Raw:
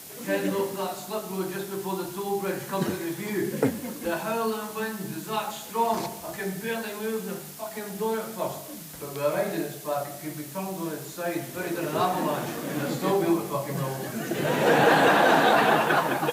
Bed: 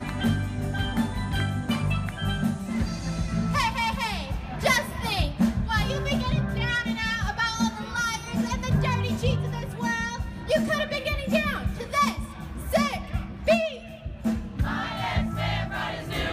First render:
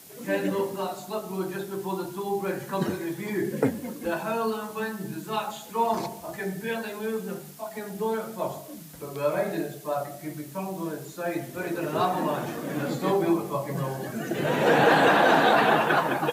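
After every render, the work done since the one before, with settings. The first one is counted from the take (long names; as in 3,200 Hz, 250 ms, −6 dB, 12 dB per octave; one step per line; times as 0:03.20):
broadband denoise 6 dB, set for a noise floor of −41 dBFS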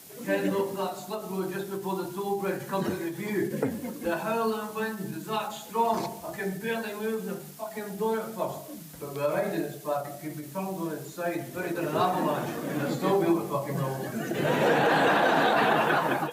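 brickwall limiter −14 dBFS, peak gain reduction 5.5 dB
every ending faded ahead of time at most 130 dB per second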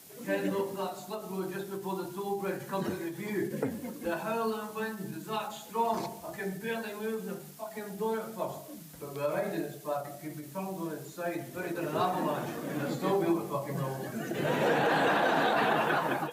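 level −4 dB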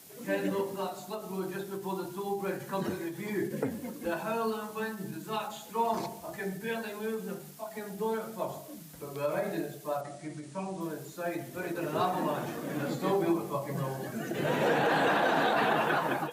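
0:10.01–0:10.81: Butterworth low-pass 9,900 Hz 72 dB per octave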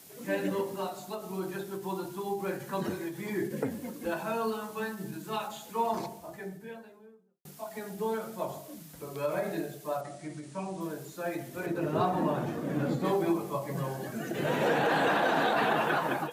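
0:05.70–0:07.45: fade out and dull
0:11.66–0:13.05: spectral tilt −2 dB per octave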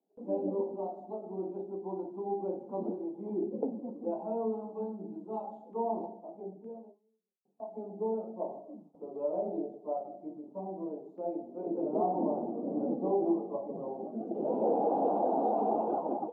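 elliptic band-pass filter 210–810 Hz, stop band 40 dB
noise gate with hold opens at −43 dBFS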